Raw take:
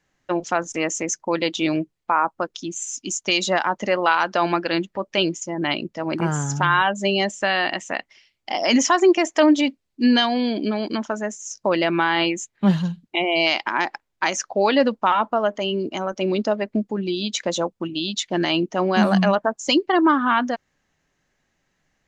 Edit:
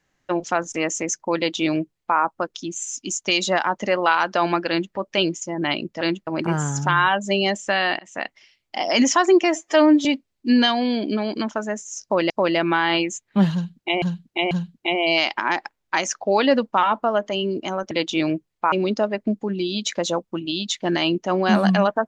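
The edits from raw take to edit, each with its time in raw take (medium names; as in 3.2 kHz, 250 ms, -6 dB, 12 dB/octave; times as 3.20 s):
1.37–2.18 s: copy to 16.20 s
4.69–4.95 s: copy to 6.01 s
7.73–7.99 s: fade in
9.19–9.59 s: stretch 1.5×
11.57–11.84 s: loop, 2 plays
12.80–13.29 s: loop, 3 plays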